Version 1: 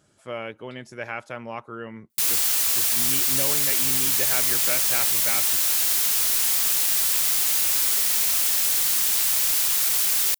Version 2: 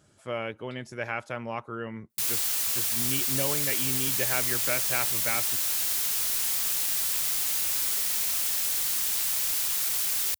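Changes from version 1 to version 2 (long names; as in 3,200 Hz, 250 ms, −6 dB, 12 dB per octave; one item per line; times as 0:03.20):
background −6.0 dB
master: add parametric band 82 Hz +4.5 dB 1.4 octaves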